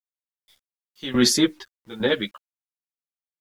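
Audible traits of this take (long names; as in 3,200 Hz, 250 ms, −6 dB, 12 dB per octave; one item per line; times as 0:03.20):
sample-and-hold tremolo 3.5 Hz, depth 85%
a quantiser's noise floor 10 bits, dither none
a shimmering, thickened sound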